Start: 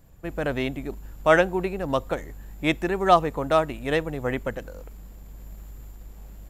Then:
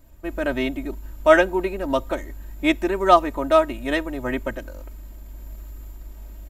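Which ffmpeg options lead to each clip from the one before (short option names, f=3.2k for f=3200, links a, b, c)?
-af "aecho=1:1:3.2:0.84"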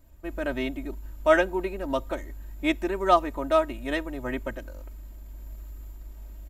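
-af "equalizer=f=60:t=o:w=0.85:g=3.5,volume=-5.5dB"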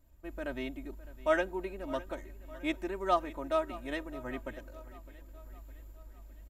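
-af "aecho=1:1:609|1218|1827|2436|3045:0.126|0.068|0.0367|0.0198|0.0107,volume=-8.5dB"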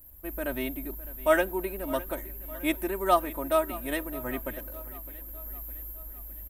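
-af "aexciter=amount=7.7:drive=9.1:freq=9.3k,volume=5.5dB"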